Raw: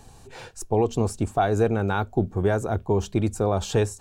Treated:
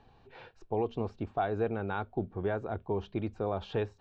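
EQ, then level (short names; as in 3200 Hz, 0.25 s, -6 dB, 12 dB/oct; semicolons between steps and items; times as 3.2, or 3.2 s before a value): LPF 3800 Hz 24 dB/oct; air absorption 67 m; low shelf 180 Hz -6.5 dB; -8.0 dB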